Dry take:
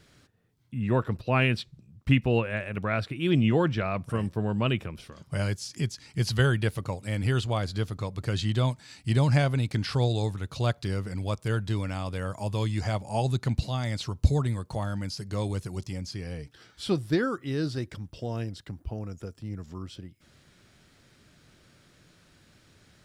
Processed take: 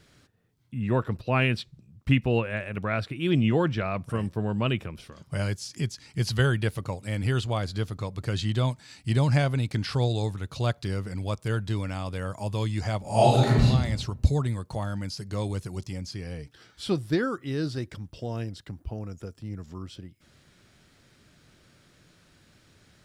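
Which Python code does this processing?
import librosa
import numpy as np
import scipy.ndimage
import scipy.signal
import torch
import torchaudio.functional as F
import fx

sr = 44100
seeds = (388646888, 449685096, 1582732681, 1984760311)

y = fx.reverb_throw(x, sr, start_s=13.01, length_s=0.64, rt60_s=1.0, drr_db=-9.5)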